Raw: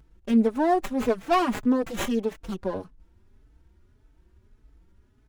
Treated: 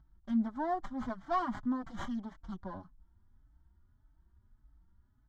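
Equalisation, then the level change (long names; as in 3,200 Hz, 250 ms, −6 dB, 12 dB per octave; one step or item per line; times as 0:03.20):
high-frequency loss of the air 160 metres
parametric band 3,100 Hz +7.5 dB 0.28 octaves
phaser with its sweep stopped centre 1,100 Hz, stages 4
−6.5 dB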